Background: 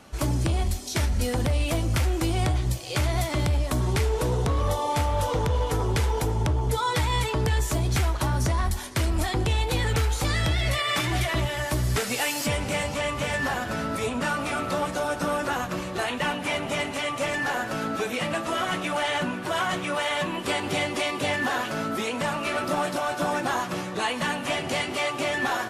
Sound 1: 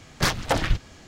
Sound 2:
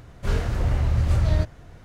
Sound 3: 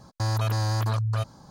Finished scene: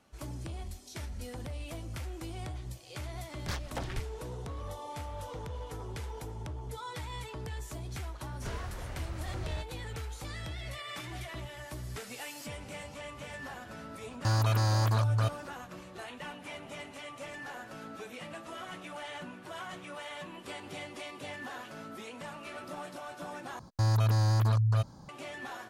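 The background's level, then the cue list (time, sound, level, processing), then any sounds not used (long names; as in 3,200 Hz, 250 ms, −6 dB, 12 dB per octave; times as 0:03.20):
background −16 dB
0:03.26: mix in 1 −16 dB
0:08.18: mix in 2 −9.5 dB + low-shelf EQ 360 Hz −11 dB
0:14.05: mix in 3 −1.5 dB, fades 0.10 s
0:23.59: overwrite with 3 −5 dB + low-shelf EQ 360 Hz +5.5 dB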